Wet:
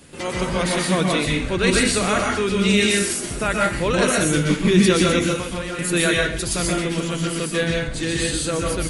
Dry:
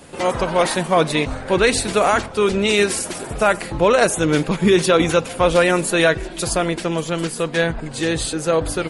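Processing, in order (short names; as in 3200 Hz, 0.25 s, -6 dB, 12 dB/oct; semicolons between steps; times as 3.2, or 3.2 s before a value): bell 740 Hz -9.5 dB 1.5 oct; 5.21–5.79 compressor 6:1, threshold -26 dBFS, peak gain reduction 10.5 dB; plate-style reverb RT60 0.5 s, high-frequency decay 0.95×, pre-delay 0.11 s, DRR -1.5 dB; gain -2 dB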